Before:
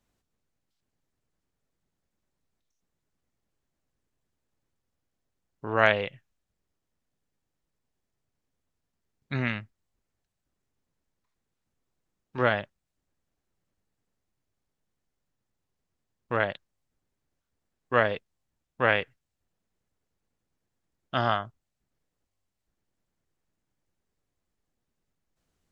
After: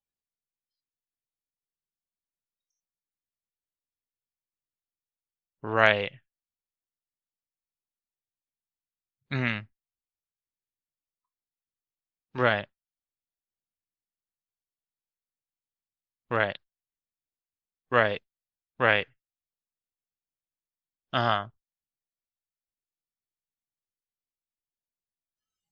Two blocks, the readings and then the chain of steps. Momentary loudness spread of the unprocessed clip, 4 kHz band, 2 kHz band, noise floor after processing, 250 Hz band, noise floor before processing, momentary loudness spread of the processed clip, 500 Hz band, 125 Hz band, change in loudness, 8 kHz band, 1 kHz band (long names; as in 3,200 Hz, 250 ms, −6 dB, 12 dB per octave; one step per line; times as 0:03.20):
17 LU, +3.0 dB, +1.5 dB, below −85 dBFS, 0.0 dB, −83 dBFS, 18 LU, 0.0 dB, 0.0 dB, +1.0 dB, can't be measured, +0.5 dB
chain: high-shelf EQ 3,200 Hz +9 dB
noise reduction from a noise print of the clip's start 24 dB
high-frequency loss of the air 67 metres